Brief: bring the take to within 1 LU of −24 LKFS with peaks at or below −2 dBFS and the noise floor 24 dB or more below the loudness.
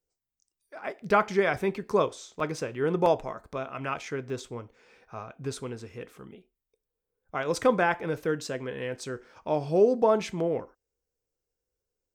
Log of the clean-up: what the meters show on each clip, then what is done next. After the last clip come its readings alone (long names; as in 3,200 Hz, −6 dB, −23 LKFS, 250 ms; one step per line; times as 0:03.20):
number of dropouts 3; longest dropout 1.5 ms; integrated loudness −28.5 LKFS; sample peak −9.5 dBFS; target loudness −24.0 LKFS
→ repair the gap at 0:02.40/0:03.06/0:04.30, 1.5 ms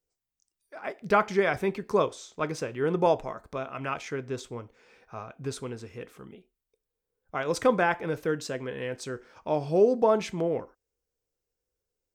number of dropouts 0; integrated loudness −28.5 LKFS; sample peak −9.5 dBFS; target loudness −24.0 LKFS
→ level +4.5 dB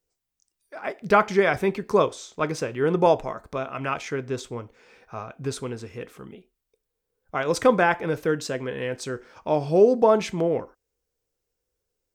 integrated loudness −24.0 LKFS; sample peak −5.0 dBFS; background noise floor −82 dBFS